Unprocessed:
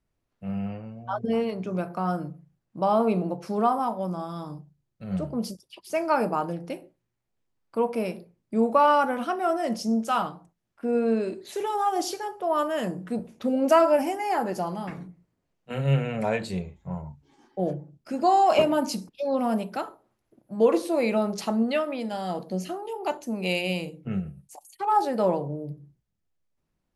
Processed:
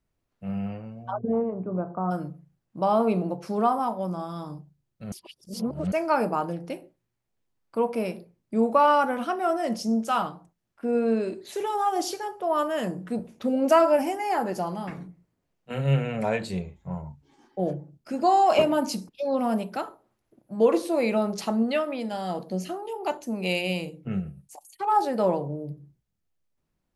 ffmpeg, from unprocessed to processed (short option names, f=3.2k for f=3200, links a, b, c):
-filter_complex "[0:a]asplit=3[a][b][c];[a]afade=t=out:st=1.1:d=0.02[d];[b]lowpass=f=1.2k:w=0.5412,lowpass=f=1.2k:w=1.3066,afade=t=in:st=1.1:d=0.02,afade=t=out:st=2.1:d=0.02[e];[c]afade=t=in:st=2.1:d=0.02[f];[d][e][f]amix=inputs=3:normalize=0,asplit=3[g][h][i];[g]atrim=end=5.122[j];[h]atrim=start=5.118:end=5.922,asetpts=PTS-STARTPTS,areverse[k];[i]atrim=start=5.918[l];[j][k]acrossfade=d=0.004:c1=hsin:c2=hsin[m];[m][l]acrossfade=d=0.004:c1=hsin:c2=hsin"